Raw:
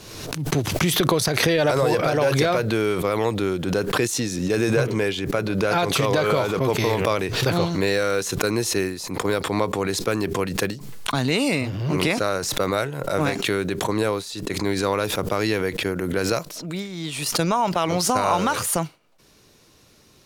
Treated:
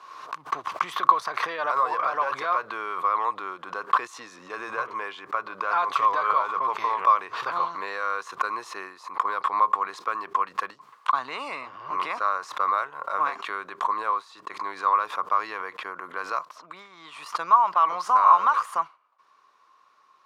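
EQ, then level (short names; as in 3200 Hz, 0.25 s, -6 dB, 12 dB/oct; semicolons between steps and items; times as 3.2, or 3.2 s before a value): resonant high-pass 1100 Hz, resonance Q 9.6; LPF 3600 Hz 6 dB/oct; tilt -3 dB/oct; -6.5 dB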